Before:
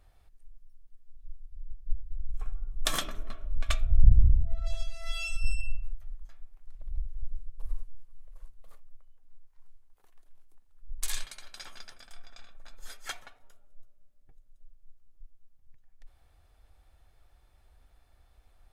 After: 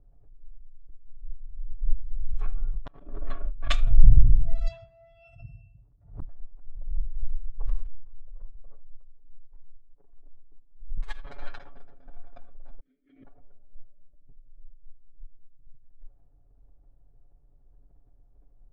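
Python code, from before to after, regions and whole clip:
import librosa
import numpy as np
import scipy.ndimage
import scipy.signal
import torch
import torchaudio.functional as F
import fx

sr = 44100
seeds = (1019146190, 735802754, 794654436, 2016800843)

y = fx.chain(x, sr, fx.over_compress(threshold_db=-28.0, ratio=-0.5),
    fx.gate_flip(shuts_db=-16.0, range_db=-36),
    fx.resample_linear(factor=4), at=(2.57, 3.65))
y = fx.chain(y, sr, fx.highpass(hz=71.0, slope=24),
    fx.high_shelf(hz=4100.0, db=-9.0), at=(4.68, 6.22))
y = fx.chain(y, sr, fx.comb(ms=7.1, depth=0.75),
    fx.over_compress(threshold_db=-30.0, ratio=-0.5), at=(10.97, 11.58))
y = fx.chain(y, sr, fx.vowel_filter(vowel='i'),
    fx.sustainer(db_per_s=130.0), at=(12.8, 13.25))
y = y + 0.8 * np.pad(y, (int(7.1 * sr / 1000.0), 0))[:len(y)]
y = fx.env_lowpass(y, sr, base_hz=360.0, full_db=-14.5)
y = fx.pre_swell(y, sr, db_per_s=150.0)
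y = y * librosa.db_to_amplitude(1.5)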